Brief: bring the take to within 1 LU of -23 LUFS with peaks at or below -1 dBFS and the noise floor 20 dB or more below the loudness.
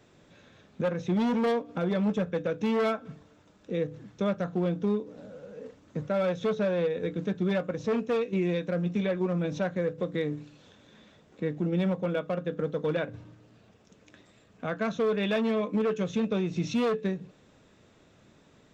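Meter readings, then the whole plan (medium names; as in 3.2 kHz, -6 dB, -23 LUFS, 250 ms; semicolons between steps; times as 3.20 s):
clipped samples 0.3%; clipping level -20.0 dBFS; loudness -29.5 LUFS; peak level -20.0 dBFS; loudness target -23.0 LUFS
-> clip repair -20 dBFS; trim +6.5 dB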